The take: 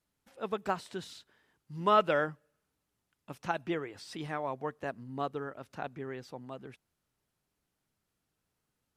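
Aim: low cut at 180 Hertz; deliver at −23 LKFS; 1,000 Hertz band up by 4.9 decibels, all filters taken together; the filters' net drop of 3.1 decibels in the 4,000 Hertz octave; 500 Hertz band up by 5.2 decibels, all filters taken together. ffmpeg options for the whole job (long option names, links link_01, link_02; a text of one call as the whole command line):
ffmpeg -i in.wav -af "highpass=180,equalizer=frequency=500:width_type=o:gain=5,equalizer=frequency=1000:width_type=o:gain=5.5,equalizer=frequency=4000:width_type=o:gain=-5,volume=7dB" out.wav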